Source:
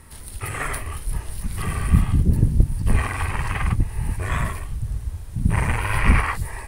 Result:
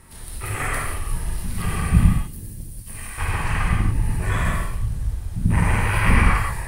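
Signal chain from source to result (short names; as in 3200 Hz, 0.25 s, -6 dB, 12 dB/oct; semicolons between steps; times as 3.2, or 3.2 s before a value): 2.08–3.18 pre-emphasis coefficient 0.9; non-linear reverb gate 0.21 s flat, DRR -3 dB; gain -2.5 dB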